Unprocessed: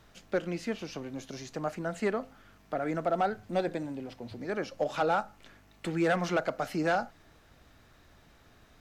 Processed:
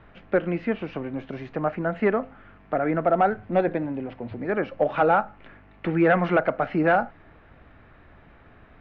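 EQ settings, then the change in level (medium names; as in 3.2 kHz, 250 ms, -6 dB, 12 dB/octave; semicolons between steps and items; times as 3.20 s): low-pass 2.5 kHz 24 dB/octave; +8.0 dB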